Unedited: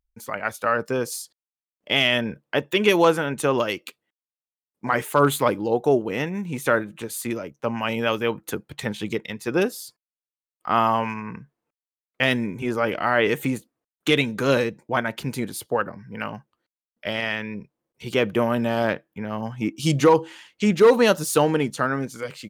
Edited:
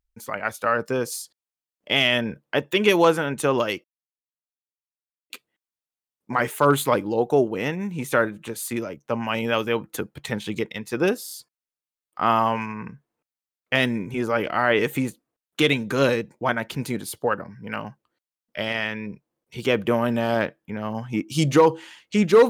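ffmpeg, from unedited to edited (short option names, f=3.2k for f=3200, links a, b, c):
-filter_complex "[0:a]asplit=4[a][b][c][d];[a]atrim=end=3.84,asetpts=PTS-STARTPTS,afade=t=out:st=3.836:d=0.004:c=hsin,apad=pad_dur=1.46[e];[b]atrim=start=3.84:end=9.822,asetpts=PTS-STARTPTS,afade=t=in:d=0.004:c=hsin[f];[c]atrim=start=9.788:end=9.822[g];[d]atrim=start=9.788[h];[e][f]concat=n=2:v=0:a=1[i];[i][g]acrossfade=d=0.004:c1=hsin:c2=hsin[j];[j][h]acrossfade=d=0.004:c1=hsin:c2=hsin"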